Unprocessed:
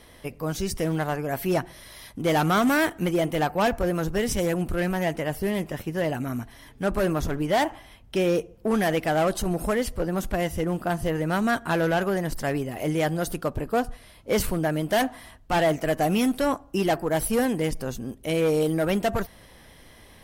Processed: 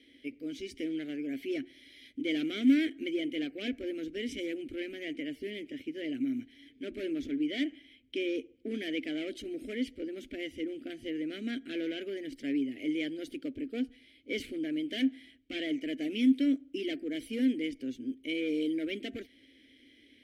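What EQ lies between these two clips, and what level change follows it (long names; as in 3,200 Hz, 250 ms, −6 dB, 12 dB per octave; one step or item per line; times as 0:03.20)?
formant filter i
phaser with its sweep stopped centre 430 Hz, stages 4
+7.0 dB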